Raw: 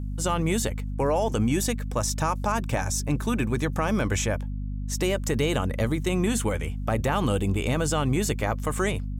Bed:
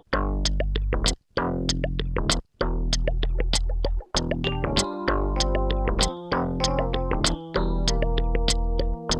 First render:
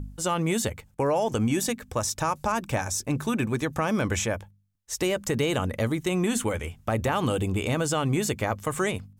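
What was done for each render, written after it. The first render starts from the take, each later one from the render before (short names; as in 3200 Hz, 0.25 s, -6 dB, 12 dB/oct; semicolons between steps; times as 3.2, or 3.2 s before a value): de-hum 50 Hz, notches 5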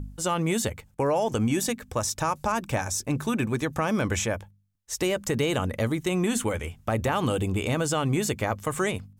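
nothing audible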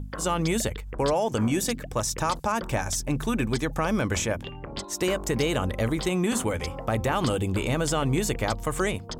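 add bed -12.5 dB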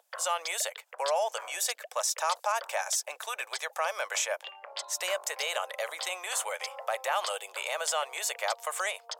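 steep high-pass 570 Hz 48 dB/oct; bell 1100 Hz -2.5 dB 1.5 oct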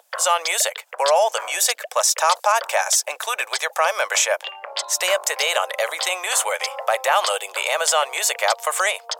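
gain +11.5 dB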